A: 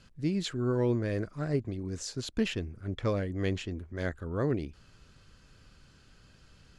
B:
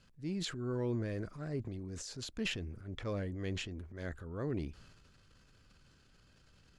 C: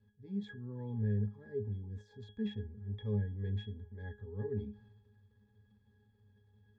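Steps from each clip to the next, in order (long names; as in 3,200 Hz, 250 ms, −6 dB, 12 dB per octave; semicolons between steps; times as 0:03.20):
transient designer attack −4 dB, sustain +8 dB; level −7.5 dB
resonances in every octave G#, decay 0.22 s; level +9.5 dB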